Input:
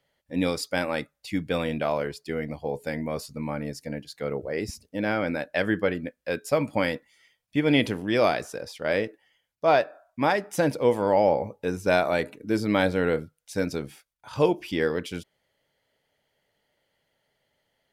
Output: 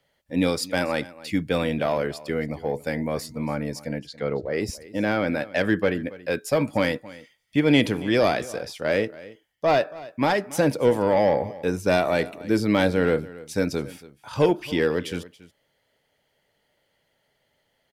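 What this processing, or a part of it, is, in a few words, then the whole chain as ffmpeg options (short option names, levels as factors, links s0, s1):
one-band saturation: -filter_complex "[0:a]asettb=1/sr,asplit=3[s0][s1][s2];[s0]atrim=end=3.994[s3];[s1]atrim=start=3.99:end=4.55,asetpts=PTS-STARTPTS,afade=t=in:d=0.004:c=qsin,afade=t=out:st=0.556:d=0.004:c=qsin,lowpass=5100[s4];[s2]atrim=start=4.546[s5];[s3][s4]acrossfade=d=0.004:c1=hsin:c2=qsin[s6];[s6][s5]acrossfade=d=0.004:c1=qsin:c2=hsin,acrossover=split=410|3100[s7][s8][s9];[s8]asoftclip=type=tanh:threshold=0.0944[s10];[s7][s10][s9]amix=inputs=3:normalize=0,aecho=1:1:279:0.112,volume=1.5"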